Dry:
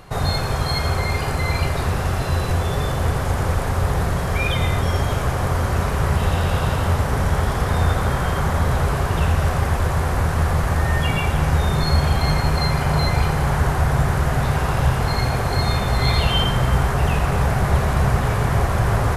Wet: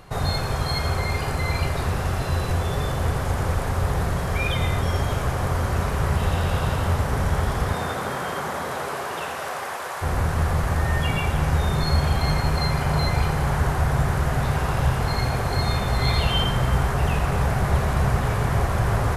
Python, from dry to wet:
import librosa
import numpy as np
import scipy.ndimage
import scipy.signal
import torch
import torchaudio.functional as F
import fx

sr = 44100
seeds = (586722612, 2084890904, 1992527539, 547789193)

y = fx.highpass(x, sr, hz=fx.line((7.72, 170.0), (10.01, 650.0)), slope=12, at=(7.72, 10.01), fade=0.02)
y = y * 10.0 ** (-3.0 / 20.0)